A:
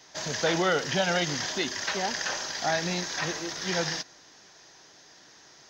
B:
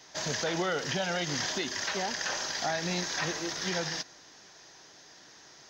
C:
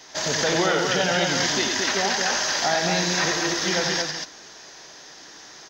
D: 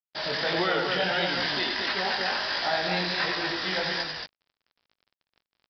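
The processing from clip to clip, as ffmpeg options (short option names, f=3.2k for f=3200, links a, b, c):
-af "alimiter=limit=-21dB:level=0:latency=1:release=162"
-filter_complex "[0:a]equalizer=f=120:w=1.2:g=-5,asplit=2[a][b];[b]aecho=0:1:90.38|224.5:0.562|0.631[c];[a][c]amix=inputs=2:normalize=0,volume=7.5dB"
-af "lowshelf=f=430:g=-6,flanger=delay=16.5:depth=6:speed=1.5,aresample=11025,acrusher=bits=5:mix=0:aa=0.5,aresample=44100"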